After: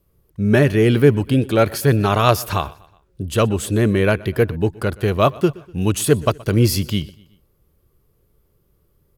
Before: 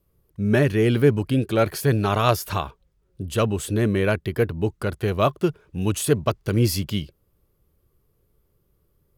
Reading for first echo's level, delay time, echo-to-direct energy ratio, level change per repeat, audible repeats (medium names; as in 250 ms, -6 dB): -22.5 dB, 123 ms, -21.5 dB, -6.0 dB, 3